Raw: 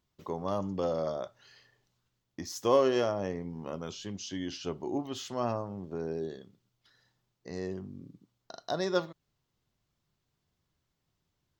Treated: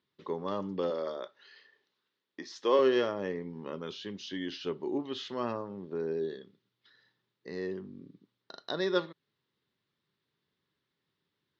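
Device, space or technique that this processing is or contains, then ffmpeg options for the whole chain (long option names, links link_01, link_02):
kitchen radio: -filter_complex "[0:a]asettb=1/sr,asplit=3[link_01][link_02][link_03];[link_01]atrim=end=0.904[link_04];[link_02]atrim=start=0.9:end=2.79,asetpts=PTS-STARTPTS,afade=type=in:duration=0.004:curve=qsin,afade=type=out:start_time=1.886:duration=0.004:curve=qsin,highpass=290[link_05];[link_03]atrim=start=2.786[link_06];[link_04][link_05]acrossfade=duration=0.004:curve1=hsin:curve2=qsin[link_07];[link_07][link_06]acrossfade=duration=0.004:curve1=qsin:curve2=hsin,highpass=180,equalizer=frequency=410:width_type=q:width=4:gain=4,equalizer=frequency=700:width_type=q:width=4:gain=-10,equalizer=frequency=1800:width_type=q:width=4:gain=5,equalizer=frequency=3700:width_type=q:width=4:gain=5,lowpass=frequency=4600:width=0.5412,lowpass=frequency=4600:width=1.3066"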